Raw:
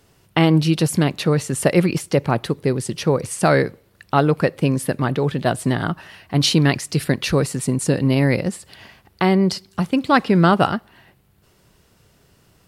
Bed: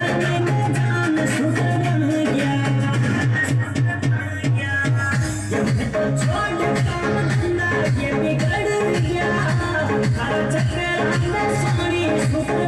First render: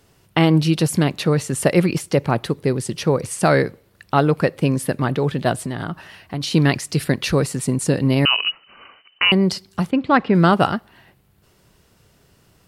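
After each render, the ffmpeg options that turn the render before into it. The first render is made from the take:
-filter_complex "[0:a]asettb=1/sr,asplit=3[s0][s1][s2];[s0]atrim=end=5.614[s3];[s1]atrim=start=5.61:end=6.54,asetpts=PTS-STARTPTS,afade=t=in:d=0.004:c=qsin,afade=t=out:st=0.926:d=0.004:c=qsin,acompressor=threshold=0.0794:ratio=6:attack=3.2:release=140:knee=1:detection=peak[s4];[s2]atrim=start=6.536[s5];[s3][s4]acrossfade=d=0.004:c1=hsin:c2=qsin[s6];[s6][s5]acrossfade=d=0.004:c1=qsin:c2=hsin,asettb=1/sr,asplit=3[s7][s8][s9];[s7]atrim=end=8.254[s10];[s8]atrim=start=8.25:end=9.32,asetpts=PTS-STARTPTS,afade=t=in:d=0.004:c=qsin,afade=t=out:st=1.066:d=0.004:c=qsin,lowpass=f=2600:t=q:w=0.5098,lowpass=f=2600:t=q:w=0.6013,lowpass=f=2600:t=q:w=0.9,lowpass=f=2600:t=q:w=2.563,afreqshift=-3100[s11];[s9]atrim=start=9.316[s12];[s10][s11]acrossfade=d=0.004:c1=hsin:c2=qsin[s13];[s13][s12]acrossfade=d=0.004:c1=qsin:c2=hsin,asplit=3[s14][s15][s16];[s14]afade=t=out:st=9.9:d=0.02[s17];[s15]lowpass=2700,afade=t=in:st=9.9:d=0.02,afade=t=out:st=10.33:d=0.02[s18];[s16]afade=t=in:st=10.33:d=0.02[s19];[s17][s18][s19]amix=inputs=3:normalize=0"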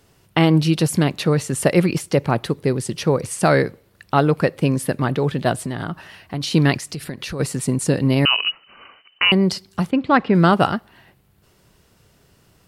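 -filter_complex "[0:a]asplit=3[s0][s1][s2];[s0]afade=t=out:st=6.77:d=0.02[s3];[s1]acompressor=threshold=0.0447:ratio=4:attack=3.2:release=140:knee=1:detection=peak,afade=t=in:st=6.77:d=0.02,afade=t=out:st=7.39:d=0.02[s4];[s2]afade=t=in:st=7.39:d=0.02[s5];[s3][s4][s5]amix=inputs=3:normalize=0"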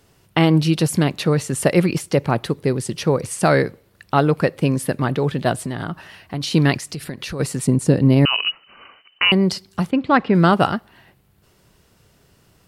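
-filter_complex "[0:a]asettb=1/sr,asplit=3[s0][s1][s2];[s0]atrim=end=7.674[s3];[s1]atrim=start=7.67:end=8.34,asetpts=PTS-STARTPTS,afade=t=in:d=0.004:c=qsin,afade=t=out:st=0.666:d=0.004:c=qsin,tiltshelf=f=770:g=4.5[s4];[s2]atrim=start=8.336[s5];[s3][s4]acrossfade=d=0.004:c1=hsin:c2=qsin[s6];[s6][s5]acrossfade=d=0.004:c1=qsin:c2=hsin"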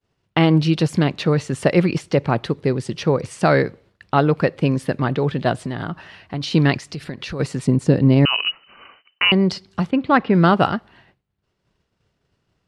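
-af "agate=range=0.0224:threshold=0.00501:ratio=3:detection=peak,lowpass=5000"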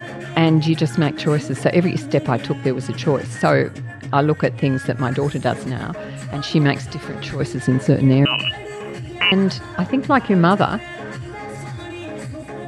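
-filter_complex "[1:a]volume=0.266[s0];[0:a][s0]amix=inputs=2:normalize=0"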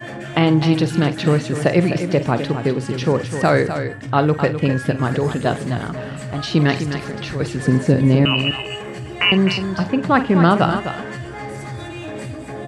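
-filter_complex "[0:a]asplit=2[s0][s1];[s1]adelay=47,volume=0.224[s2];[s0][s2]amix=inputs=2:normalize=0,aecho=1:1:255:0.355"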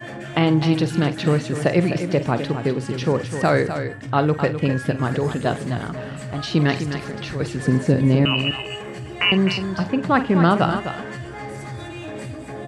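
-af "volume=0.75"

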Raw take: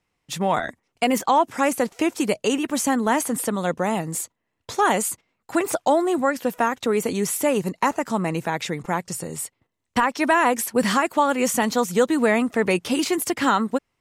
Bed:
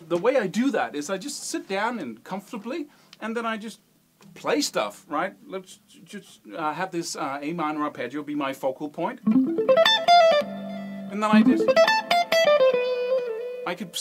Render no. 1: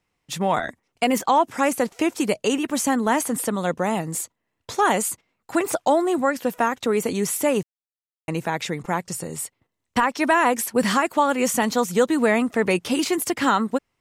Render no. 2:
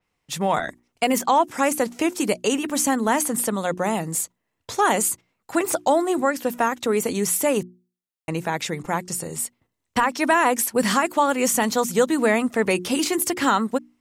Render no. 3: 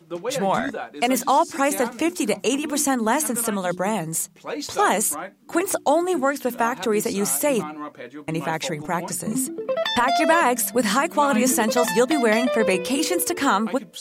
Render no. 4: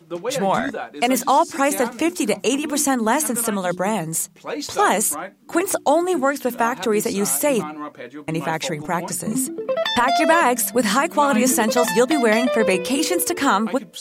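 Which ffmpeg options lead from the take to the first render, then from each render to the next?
-filter_complex "[0:a]asplit=3[s0][s1][s2];[s0]atrim=end=7.63,asetpts=PTS-STARTPTS,afade=t=out:st=7.626:d=0.004:c=hsin[s3];[s1]atrim=start=7.63:end=8.28,asetpts=PTS-STARTPTS,volume=0[s4];[s2]atrim=start=8.28,asetpts=PTS-STARTPTS,afade=t=in:d=0.004:c=hsin[s5];[s3][s4][s5]concat=n=3:v=0:a=1"
-af "bandreject=f=60:t=h:w=6,bandreject=f=120:t=h:w=6,bandreject=f=180:t=h:w=6,bandreject=f=240:t=h:w=6,bandreject=f=300:t=h:w=6,bandreject=f=360:t=h:w=6,adynamicequalizer=threshold=0.0141:dfrequency=5100:dqfactor=0.7:tfrequency=5100:tqfactor=0.7:attack=5:release=100:ratio=0.375:range=2:mode=boostabove:tftype=highshelf"
-filter_complex "[1:a]volume=0.473[s0];[0:a][s0]amix=inputs=2:normalize=0"
-af "volume=1.26"

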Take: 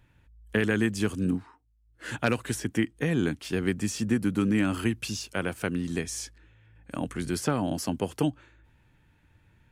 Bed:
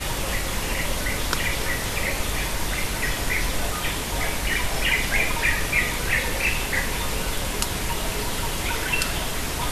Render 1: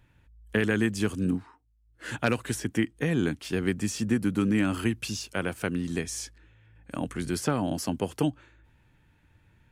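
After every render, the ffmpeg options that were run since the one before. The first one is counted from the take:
-af anull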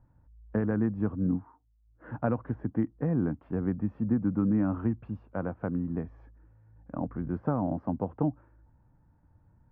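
-af "lowpass=f=1100:w=0.5412,lowpass=f=1100:w=1.3066,equalizer=f=390:t=o:w=0.42:g=-8"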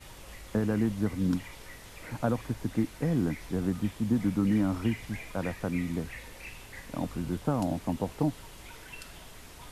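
-filter_complex "[1:a]volume=0.0841[s0];[0:a][s0]amix=inputs=2:normalize=0"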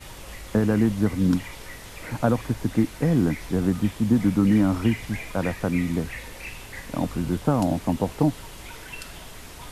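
-af "volume=2.24"

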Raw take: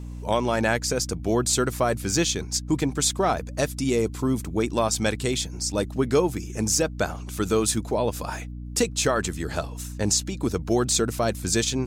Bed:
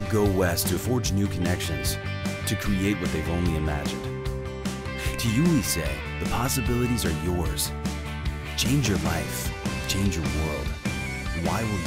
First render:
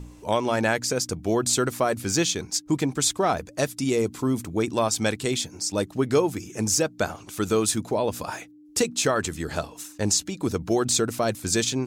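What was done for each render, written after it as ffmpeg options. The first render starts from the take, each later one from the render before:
-af "bandreject=f=60:t=h:w=4,bandreject=f=120:t=h:w=4,bandreject=f=180:t=h:w=4,bandreject=f=240:t=h:w=4"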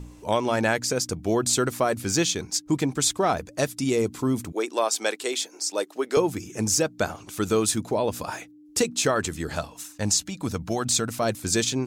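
-filter_complex "[0:a]asettb=1/sr,asplit=3[s0][s1][s2];[s0]atrim=end=4.524[s3];[s1]atrim=start=4.52:end=6.17,asetpts=PTS-STARTPTS,afade=t=in:d=0.004:c=qsin,afade=t=out:st=1.646:d=0.004:c=qsin,highpass=f=350:w=0.5412,highpass=f=350:w=1.3066[s4];[s2]atrim=start=6.166[s5];[s3][s4]acrossfade=d=0.004:c1=hsin:c2=qsin[s6];[s6][s5]acrossfade=d=0.004:c1=qsin:c2=hsin,asettb=1/sr,asplit=3[s7][s8][s9];[s7]atrim=end=9.554[s10];[s8]atrim=start=9.55:end=11.22,asetpts=PTS-STARTPTS,afade=t=in:d=0.004:c=qsin,afade=t=out:st=1.666:d=0.004:c=qsin,equalizer=f=380:w=2.4:g=-9[s11];[s9]atrim=start=11.216[s12];[s10][s11]acrossfade=d=0.004:c1=hsin:c2=qsin[s13];[s13][s12]acrossfade=d=0.004:c1=qsin:c2=hsin"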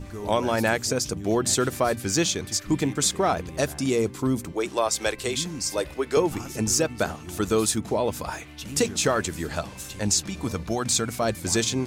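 -filter_complex "[1:a]volume=0.211[s0];[0:a][s0]amix=inputs=2:normalize=0"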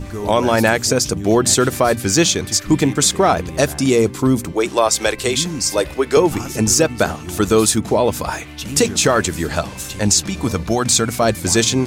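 -af "volume=2.82,alimiter=limit=0.708:level=0:latency=1"

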